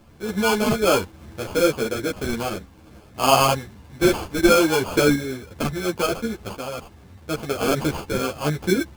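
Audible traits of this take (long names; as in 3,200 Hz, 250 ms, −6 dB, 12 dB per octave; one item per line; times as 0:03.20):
aliases and images of a low sample rate 1,900 Hz, jitter 0%
sample-and-hold tremolo
a shimmering, thickened sound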